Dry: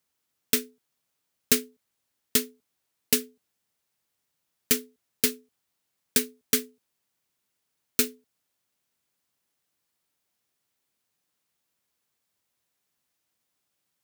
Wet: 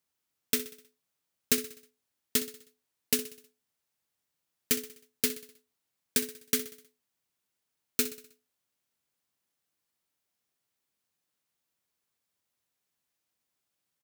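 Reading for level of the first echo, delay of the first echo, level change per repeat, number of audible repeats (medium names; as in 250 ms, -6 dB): -14.0 dB, 63 ms, -6.0 dB, 4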